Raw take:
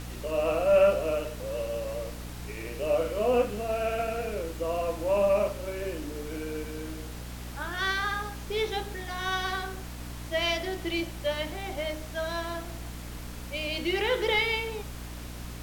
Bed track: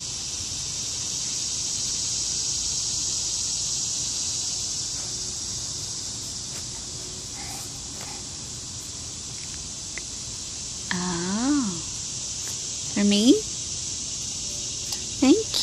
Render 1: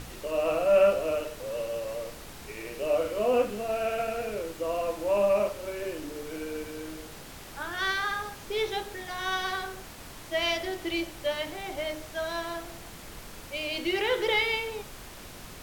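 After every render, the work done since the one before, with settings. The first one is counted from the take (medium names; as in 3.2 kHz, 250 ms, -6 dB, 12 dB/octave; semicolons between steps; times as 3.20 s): de-hum 60 Hz, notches 5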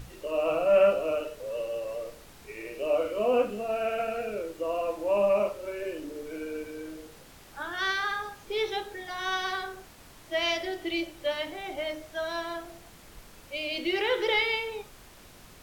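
noise print and reduce 7 dB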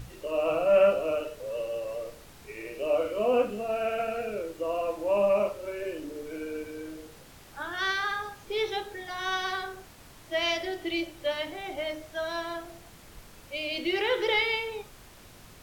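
peaking EQ 110 Hz +3.5 dB 0.91 oct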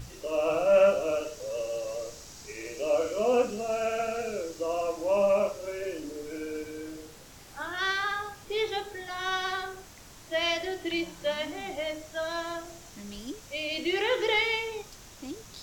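add bed track -22.5 dB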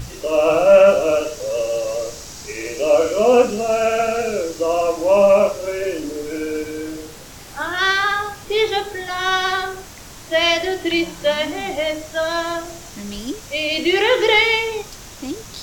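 trim +11.5 dB; peak limiter -3 dBFS, peak gain reduction 3 dB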